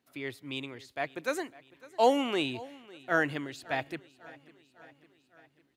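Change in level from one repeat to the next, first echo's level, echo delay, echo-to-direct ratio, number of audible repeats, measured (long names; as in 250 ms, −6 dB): −4.5 dB, −21.0 dB, 553 ms, −19.0 dB, 4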